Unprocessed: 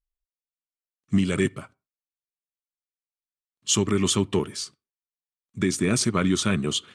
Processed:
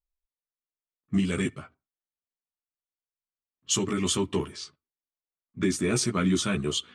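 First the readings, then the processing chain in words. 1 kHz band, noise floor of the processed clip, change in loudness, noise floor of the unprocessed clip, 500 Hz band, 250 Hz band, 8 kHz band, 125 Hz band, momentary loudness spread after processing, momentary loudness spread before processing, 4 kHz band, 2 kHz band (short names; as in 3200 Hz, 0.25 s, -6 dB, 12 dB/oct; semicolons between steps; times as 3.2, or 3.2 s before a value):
-3.0 dB, under -85 dBFS, -3.0 dB, under -85 dBFS, -3.5 dB, -3.0 dB, -3.5 dB, -4.0 dB, 11 LU, 11 LU, -3.0 dB, -3.5 dB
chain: chorus voices 6, 0.37 Hz, delay 14 ms, depth 2.4 ms; low-pass opened by the level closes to 1300 Hz, open at -25 dBFS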